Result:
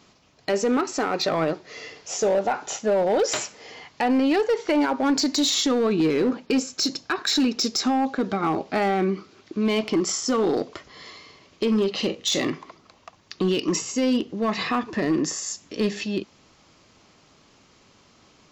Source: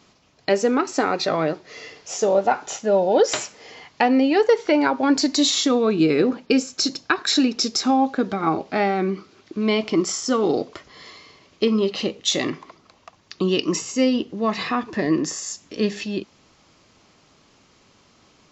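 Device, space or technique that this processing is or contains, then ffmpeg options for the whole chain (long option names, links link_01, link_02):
limiter into clipper: -filter_complex "[0:a]asettb=1/sr,asplit=3[link_01][link_02][link_03];[link_01]atrim=end=11.984[link_04];[link_02]atrim=start=11.98:end=12.44,asetpts=PTS-STARTPTS,afade=type=in:duration=0.004:curve=qsin,afade=type=out:start_time=0.456:duration=0.004:curve=qsin,asplit=2[link_05][link_06];[link_06]adelay=43,volume=-8.5dB[link_07];[link_05][link_07]amix=inputs=2:normalize=0,atrim=end_sample=20286[link_08];[link_03]atrim=start=12.436[link_09];[link_04][link_08]acrossfade=duration=0.004:curve1=hsin:curve2=qsin[link_10];[link_10][link_09]acrossfade=duration=0.004:curve1=qsin:curve2=hsin,alimiter=limit=-13dB:level=0:latency=1:release=32,asoftclip=type=hard:threshold=-16dB"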